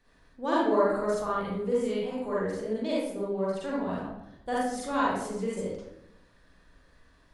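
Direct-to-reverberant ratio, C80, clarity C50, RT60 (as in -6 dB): -7.5 dB, 2.5 dB, -3.5 dB, 0.80 s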